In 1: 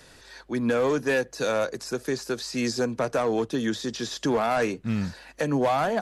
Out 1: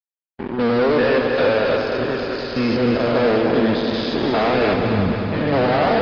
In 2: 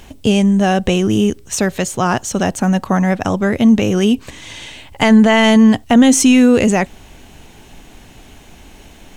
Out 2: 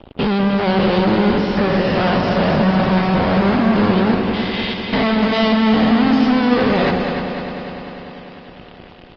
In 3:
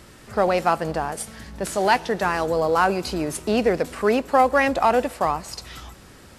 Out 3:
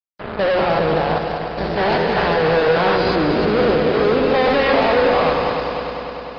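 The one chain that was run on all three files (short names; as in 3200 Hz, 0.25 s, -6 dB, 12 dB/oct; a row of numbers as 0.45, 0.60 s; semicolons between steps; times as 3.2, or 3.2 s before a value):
stepped spectrum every 0.2 s; de-hum 90.5 Hz, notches 18; spectral gate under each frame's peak -25 dB strong; gate with hold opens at -39 dBFS; dynamic EQ 500 Hz, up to +5 dB, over -34 dBFS, Q 1.8; in parallel at +0.5 dB: limiter -9.5 dBFS; on the sum: fuzz box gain 24 dB, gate -31 dBFS; on a send: multi-head echo 0.1 s, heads second and third, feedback 68%, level -8 dB; on the sum: downsampling 11025 Hz; gain -2 dB; Opus 24 kbps 48000 Hz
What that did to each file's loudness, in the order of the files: +8.0, -3.0, +4.5 LU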